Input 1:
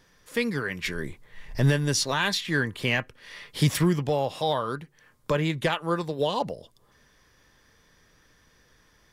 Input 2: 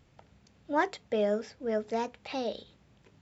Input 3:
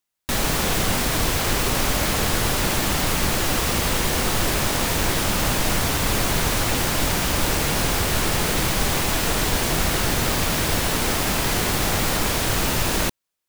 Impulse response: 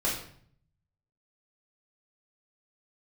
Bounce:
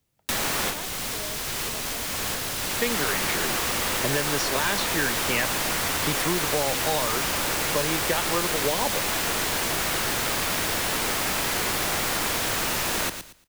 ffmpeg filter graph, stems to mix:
-filter_complex "[0:a]adelay=2450,volume=1.33[s0];[1:a]volume=0.2,asplit=2[s1][s2];[2:a]tiltshelf=f=1500:g=-4.5,volume=0.891,asplit=2[s3][s4];[s4]volume=0.266[s5];[s2]apad=whole_len=594758[s6];[s3][s6]sidechaincompress=threshold=0.002:ratio=3:attack=10:release=578[s7];[s5]aecho=0:1:115|230|345|460:1|0.22|0.0484|0.0106[s8];[s0][s1][s7][s8]amix=inputs=4:normalize=0,acrossover=split=82|280|2200[s9][s10][s11][s12];[s9]acompressor=threshold=0.00794:ratio=4[s13];[s10]acompressor=threshold=0.0112:ratio=4[s14];[s11]acompressor=threshold=0.0708:ratio=4[s15];[s12]acompressor=threshold=0.0447:ratio=4[s16];[s13][s14][s15][s16]amix=inputs=4:normalize=0"

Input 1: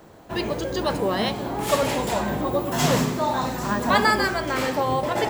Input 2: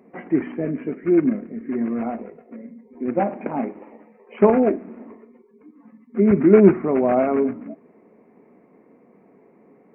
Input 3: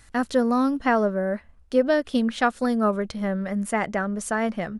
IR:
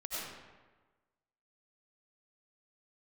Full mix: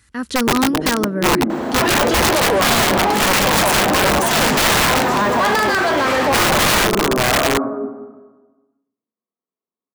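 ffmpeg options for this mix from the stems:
-filter_complex "[0:a]asplit=2[s0][s1];[s1]highpass=f=720:p=1,volume=70.8,asoftclip=type=tanh:threshold=0.501[s2];[s0][s2]amix=inputs=2:normalize=0,lowpass=f=1700:p=1,volume=0.501,adelay=1500,volume=0.794[s3];[1:a]afwtdn=0.0501,agate=range=0.0398:threshold=0.0178:ratio=16:detection=peak,equalizer=f=1200:t=o:w=0.65:g=14.5,adelay=150,volume=0.794,asplit=2[s4][s5];[s5]volume=0.531[s6];[2:a]acompressor=threshold=0.0562:ratio=1.5,equalizer=f=680:t=o:w=0.52:g=-14.5,dynaudnorm=f=160:g=3:m=3.35,volume=0.841[s7];[3:a]atrim=start_sample=2205[s8];[s6][s8]afir=irnorm=-1:irlink=0[s9];[s3][s4][s7][s9]amix=inputs=4:normalize=0,highpass=f=50:w=0.5412,highpass=f=50:w=1.3066,aeval=exprs='(mod(2.99*val(0)+1,2)-1)/2.99':c=same"

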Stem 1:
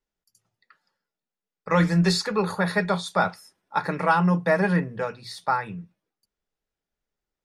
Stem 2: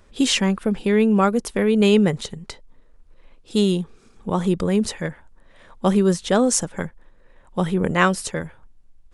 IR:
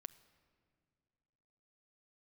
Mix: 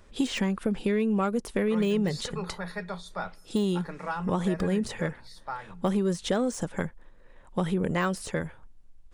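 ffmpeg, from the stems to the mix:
-filter_complex "[0:a]volume=0.188,asplit=2[s0][s1];[s1]volume=0.562[s2];[1:a]deesser=0.6,asoftclip=type=tanh:threshold=0.398,volume=0.841[s3];[2:a]atrim=start_sample=2205[s4];[s2][s4]afir=irnorm=-1:irlink=0[s5];[s0][s3][s5]amix=inputs=3:normalize=0,acompressor=threshold=0.0708:ratio=5"

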